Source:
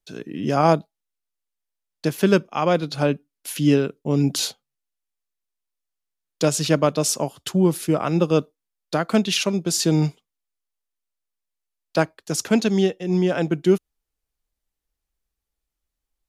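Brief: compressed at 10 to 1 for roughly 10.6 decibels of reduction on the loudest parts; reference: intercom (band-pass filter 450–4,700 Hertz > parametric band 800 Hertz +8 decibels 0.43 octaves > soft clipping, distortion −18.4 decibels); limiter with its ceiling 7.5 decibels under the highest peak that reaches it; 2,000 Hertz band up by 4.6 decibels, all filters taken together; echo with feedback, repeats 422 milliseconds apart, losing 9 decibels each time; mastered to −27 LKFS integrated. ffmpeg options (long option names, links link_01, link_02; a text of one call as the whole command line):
ffmpeg -i in.wav -af "equalizer=frequency=2000:width_type=o:gain=6.5,acompressor=threshold=-22dB:ratio=10,alimiter=limit=-17dB:level=0:latency=1,highpass=450,lowpass=4700,equalizer=frequency=800:width_type=o:width=0.43:gain=8,aecho=1:1:422|844|1266|1688:0.355|0.124|0.0435|0.0152,asoftclip=threshold=-20.5dB,volume=7dB" out.wav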